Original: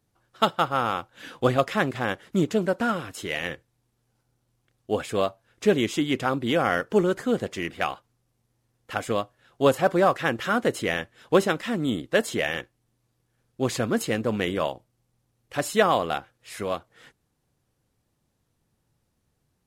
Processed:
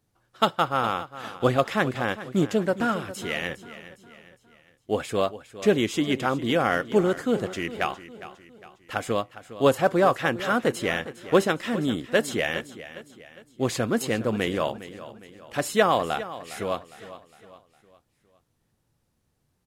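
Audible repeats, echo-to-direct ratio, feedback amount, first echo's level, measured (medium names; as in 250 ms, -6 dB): 3, -14.0 dB, 45%, -15.0 dB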